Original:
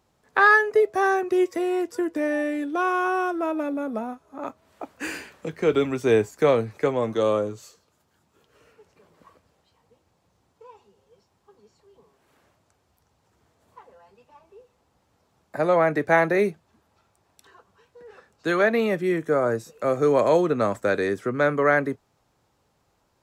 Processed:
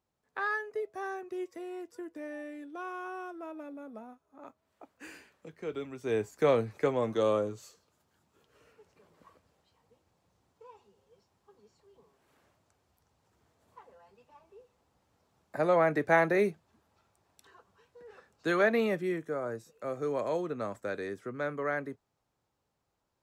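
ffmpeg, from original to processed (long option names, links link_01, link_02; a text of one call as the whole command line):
ffmpeg -i in.wav -af "volume=-5.5dB,afade=type=in:start_time=5.96:duration=0.58:silence=0.281838,afade=type=out:start_time=18.82:duration=0.51:silence=0.421697" out.wav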